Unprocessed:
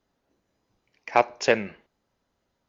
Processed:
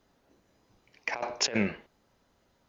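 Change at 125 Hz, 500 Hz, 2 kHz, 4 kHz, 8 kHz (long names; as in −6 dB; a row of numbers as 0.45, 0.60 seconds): +2.0 dB, −11.5 dB, −5.5 dB, +3.0 dB, can't be measured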